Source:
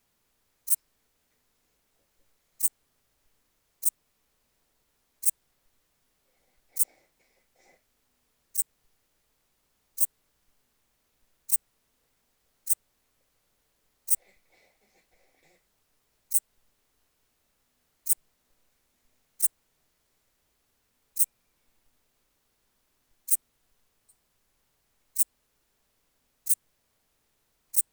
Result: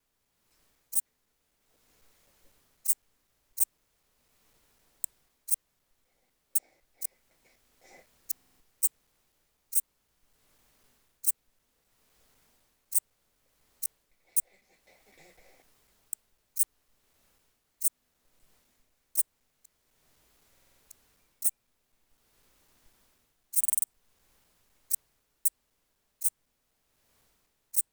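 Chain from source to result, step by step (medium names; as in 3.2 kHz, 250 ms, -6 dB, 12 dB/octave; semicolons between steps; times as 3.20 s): slices played last to first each 252 ms, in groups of 2; level rider gain up to 13 dB; buffer glitch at 8.32/20.53/23.59 s, samples 2048, times 5; trim -6 dB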